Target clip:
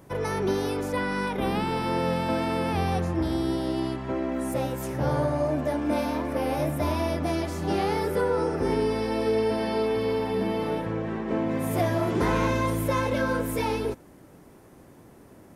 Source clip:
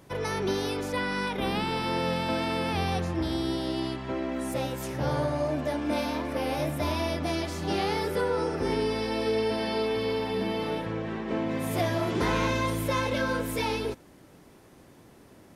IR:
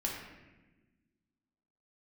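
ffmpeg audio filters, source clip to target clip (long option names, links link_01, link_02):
-af "equalizer=frequency=3800:width=0.71:gain=-7.5,volume=3dB"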